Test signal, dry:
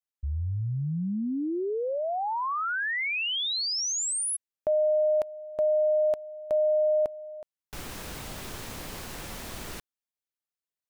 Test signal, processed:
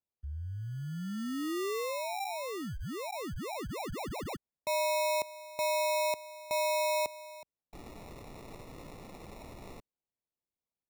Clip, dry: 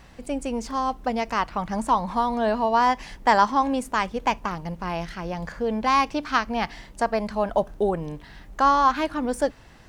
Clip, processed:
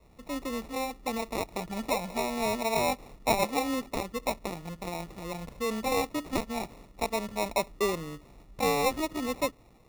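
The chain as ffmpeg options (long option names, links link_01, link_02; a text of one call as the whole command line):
ffmpeg -i in.wav -filter_complex "[0:a]adynamicequalizer=threshold=0.0126:dfrequency=380:dqfactor=1:tfrequency=380:tqfactor=1:attack=5:release=100:ratio=0.375:range=2.5:mode=boostabove:tftype=bell,acrossover=split=140[link_01][link_02];[link_02]acrusher=samples=28:mix=1:aa=0.000001[link_03];[link_01][link_03]amix=inputs=2:normalize=0,volume=-9dB" out.wav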